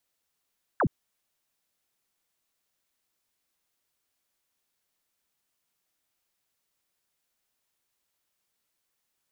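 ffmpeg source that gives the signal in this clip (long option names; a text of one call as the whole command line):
ffmpeg -f lavfi -i "aevalsrc='0.0944*clip(t/0.002,0,1)*clip((0.07-t)/0.002,0,1)*sin(2*PI*1800*0.07/log(100/1800)*(exp(log(100/1800)*t/0.07)-1))':duration=0.07:sample_rate=44100" out.wav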